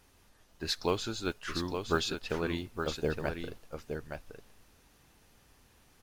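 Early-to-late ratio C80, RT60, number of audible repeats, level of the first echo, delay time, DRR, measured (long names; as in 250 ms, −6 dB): no reverb audible, no reverb audible, 1, −6.5 dB, 867 ms, no reverb audible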